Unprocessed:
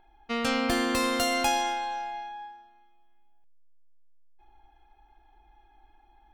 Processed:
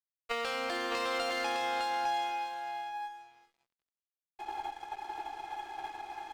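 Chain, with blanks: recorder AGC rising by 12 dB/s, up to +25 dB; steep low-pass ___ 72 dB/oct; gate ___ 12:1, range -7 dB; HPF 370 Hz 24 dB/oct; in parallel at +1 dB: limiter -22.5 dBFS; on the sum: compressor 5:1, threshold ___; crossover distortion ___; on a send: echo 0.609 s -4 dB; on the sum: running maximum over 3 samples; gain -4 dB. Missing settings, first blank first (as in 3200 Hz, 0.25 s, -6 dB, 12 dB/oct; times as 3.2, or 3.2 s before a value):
5500 Hz, -30 dBFS, -27 dBFS, -49.5 dBFS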